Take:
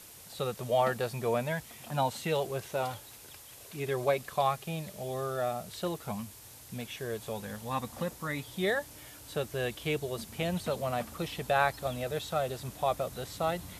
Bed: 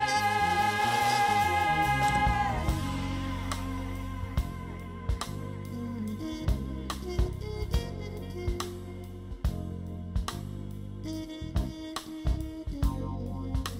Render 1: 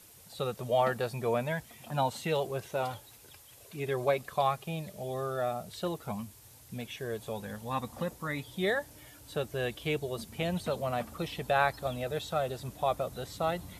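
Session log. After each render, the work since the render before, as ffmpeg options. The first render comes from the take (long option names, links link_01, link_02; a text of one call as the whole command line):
ffmpeg -i in.wav -af "afftdn=noise_reduction=6:noise_floor=-51" out.wav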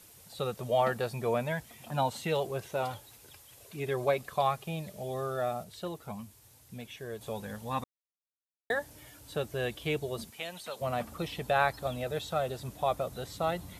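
ffmpeg -i in.wav -filter_complex "[0:a]asplit=3[link_01][link_02][link_03];[link_01]afade=type=out:start_time=10.29:duration=0.02[link_04];[link_02]highpass=frequency=1400:poles=1,afade=type=in:start_time=10.29:duration=0.02,afade=type=out:start_time=10.8:duration=0.02[link_05];[link_03]afade=type=in:start_time=10.8:duration=0.02[link_06];[link_04][link_05][link_06]amix=inputs=3:normalize=0,asplit=5[link_07][link_08][link_09][link_10][link_11];[link_07]atrim=end=5.642[link_12];[link_08]atrim=start=5.638:end=7.212,asetpts=PTS-STARTPTS,volume=-4dB[link_13];[link_09]atrim=start=7.208:end=7.84,asetpts=PTS-STARTPTS,afade=type=out:start_time=0.628:duration=0.004:curve=hsin[link_14];[link_10]atrim=start=7.84:end=8.7,asetpts=PTS-STARTPTS,volume=0[link_15];[link_11]atrim=start=8.7,asetpts=PTS-STARTPTS,afade=type=in:duration=0.004:curve=hsin[link_16];[link_12][link_13]acrossfade=duration=0.004:curve1=hsin:curve2=hsin[link_17];[link_14][link_15][link_16]concat=n=3:v=0:a=1[link_18];[link_17][link_18]acrossfade=duration=0.004:curve1=hsin:curve2=hsin" out.wav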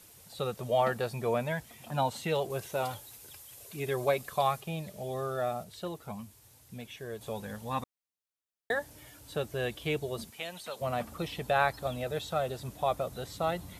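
ffmpeg -i in.wav -filter_complex "[0:a]asettb=1/sr,asplit=3[link_01][link_02][link_03];[link_01]atrim=end=2.504[link_04];[link_02]atrim=start=2.5:end=4.61,asetpts=PTS-STARTPTS,afade=type=in:duration=0.004:curve=qsin,afade=type=out:start_time=2.106:duration=0.004:curve=qsin,highshelf=frequency=5800:gain=7[link_05];[link_03]atrim=start=4.606[link_06];[link_04][link_05]acrossfade=duration=0.004:curve1=hsin:curve2=qsin[link_07];[link_07][link_06]acrossfade=duration=0.004:curve1=qsin:curve2=hsin" out.wav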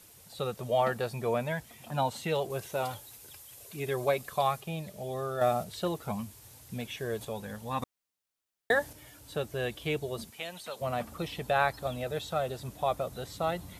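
ffmpeg -i in.wav -filter_complex "[0:a]asettb=1/sr,asplit=3[link_01][link_02][link_03];[link_01]atrim=end=5.414[link_04];[link_02]atrim=start=5.41:end=7.25,asetpts=PTS-STARTPTS,afade=type=in:duration=0.004:curve=qsin,afade=type=out:start_time=1.836:duration=0.004:curve=qsin,acontrast=56[link_05];[link_03]atrim=start=7.246[link_06];[link_04][link_05]acrossfade=duration=0.004:curve1=hsin:curve2=qsin[link_07];[link_07][link_06]acrossfade=duration=0.004:curve1=qsin:curve2=hsin,asettb=1/sr,asplit=3[link_08][link_09][link_10];[link_08]atrim=end=7.824[link_11];[link_09]atrim=start=7.82:end=8.93,asetpts=PTS-STARTPTS,afade=type=in:duration=0.004:curve=qsin,afade=type=out:start_time=1.106:duration=0.004:curve=qsin,acontrast=29[link_12];[link_10]atrim=start=8.926[link_13];[link_11][link_12]acrossfade=duration=0.004:curve1=hsin:curve2=qsin[link_14];[link_14][link_13]acrossfade=duration=0.004:curve1=qsin:curve2=hsin" out.wav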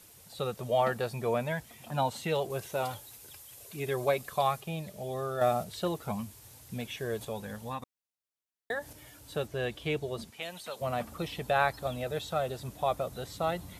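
ffmpeg -i in.wav -filter_complex "[0:a]asettb=1/sr,asplit=3[link_01][link_02][link_03];[link_01]atrim=end=9.474[link_04];[link_02]atrim=start=9.47:end=10.42,asetpts=PTS-STARTPTS,afade=type=in:duration=0.004:curve=qsin,afade=type=out:start_time=0.946:duration=0.004:curve=qsin,highshelf=frequency=10000:gain=-10.5[link_05];[link_03]atrim=start=10.416[link_06];[link_04][link_05]acrossfade=duration=0.004:curve1=hsin:curve2=qsin[link_07];[link_07][link_06]acrossfade=duration=0.004:curve1=qsin:curve2=hsin,asplit=3[link_08][link_09][link_10];[link_08]atrim=end=7.79,asetpts=PTS-STARTPTS,afade=type=out:start_time=7.67:duration=0.12:silence=0.375837[link_11];[link_09]atrim=start=7.79:end=8.8,asetpts=PTS-STARTPTS,volume=-8.5dB[link_12];[link_10]atrim=start=8.8,asetpts=PTS-STARTPTS,afade=type=in:duration=0.12:silence=0.375837[link_13];[link_11][link_12][link_13]concat=n=3:v=0:a=1" out.wav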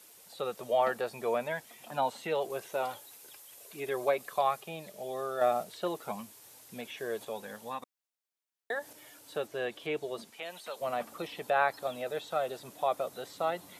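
ffmpeg -i in.wav -filter_complex "[0:a]acrossover=split=2700[link_01][link_02];[link_02]acompressor=threshold=-47dB:ratio=4:attack=1:release=60[link_03];[link_01][link_03]amix=inputs=2:normalize=0,highpass=310" out.wav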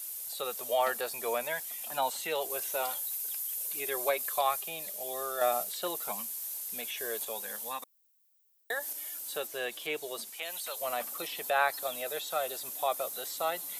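ffmpeg -i in.wav -af "aemphasis=mode=production:type=riaa" out.wav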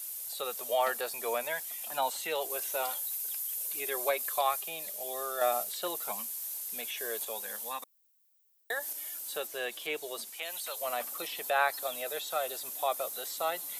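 ffmpeg -i in.wav -af "highpass=frequency=210:poles=1" out.wav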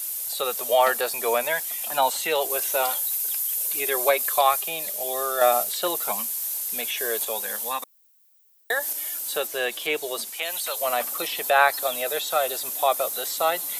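ffmpeg -i in.wav -af "volume=9.5dB" out.wav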